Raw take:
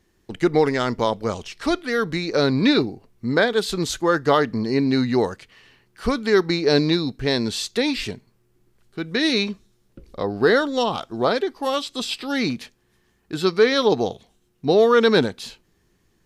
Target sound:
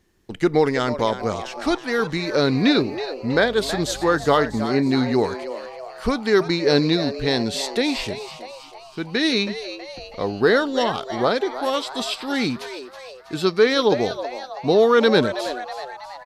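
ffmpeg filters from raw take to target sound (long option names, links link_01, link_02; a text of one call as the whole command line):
ffmpeg -i in.wav -filter_complex "[0:a]asettb=1/sr,asplit=3[link_01][link_02][link_03];[link_01]atrim=end=3.344[link_04];[link_02]atrim=start=3.34:end=4.6,asetpts=PTS-STARTPTS,afade=type=in:duration=0.004:curve=qsin,afade=type=out:start_time=1.256:duration=0.004:curve=qsin,aeval=exprs='val(0)+0.01*(sin(2*PI*50*n/s)+sin(2*PI*2*50*n/s)/2+sin(2*PI*3*50*n/s)/3+sin(2*PI*4*50*n/s)/4+sin(2*PI*5*50*n/s)/5)':channel_layout=same[link_05];[link_03]atrim=start=4.596[link_06];[link_04][link_05]acrossfade=duration=0.004:curve1=hsin:curve2=qsin[link_07];[link_07][link_06]acrossfade=duration=0.004:curve1=qsin:curve2=hsin,asplit=2[link_08][link_09];[link_09]asplit=6[link_10][link_11][link_12][link_13][link_14][link_15];[link_10]adelay=323,afreqshift=130,volume=-12dB[link_16];[link_11]adelay=646,afreqshift=260,volume=-17.2dB[link_17];[link_12]adelay=969,afreqshift=390,volume=-22.4dB[link_18];[link_13]adelay=1292,afreqshift=520,volume=-27.6dB[link_19];[link_14]adelay=1615,afreqshift=650,volume=-32.8dB[link_20];[link_15]adelay=1938,afreqshift=780,volume=-38dB[link_21];[link_16][link_17][link_18][link_19][link_20][link_21]amix=inputs=6:normalize=0[link_22];[link_08][link_22]amix=inputs=2:normalize=0" out.wav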